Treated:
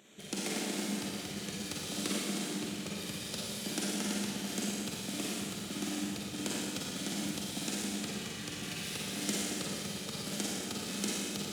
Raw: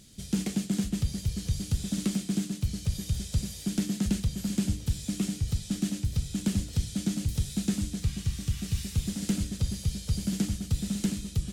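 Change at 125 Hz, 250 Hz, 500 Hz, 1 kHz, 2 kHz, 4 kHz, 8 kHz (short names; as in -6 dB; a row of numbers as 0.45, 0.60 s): -15.0, -7.0, +3.5, +7.0, +6.0, +3.0, +0.5 dB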